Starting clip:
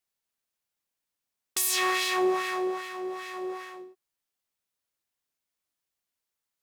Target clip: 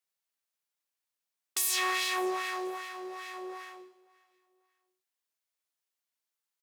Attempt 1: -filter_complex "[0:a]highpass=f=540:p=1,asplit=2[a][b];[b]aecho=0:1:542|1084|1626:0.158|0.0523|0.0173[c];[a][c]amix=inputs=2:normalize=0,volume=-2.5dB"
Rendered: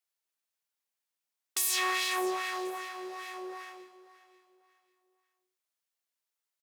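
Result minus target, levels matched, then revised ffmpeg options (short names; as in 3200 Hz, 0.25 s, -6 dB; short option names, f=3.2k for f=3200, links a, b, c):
echo-to-direct +7 dB
-filter_complex "[0:a]highpass=f=540:p=1,asplit=2[a][b];[b]aecho=0:1:542|1084:0.0708|0.0234[c];[a][c]amix=inputs=2:normalize=0,volume=-2.5dB"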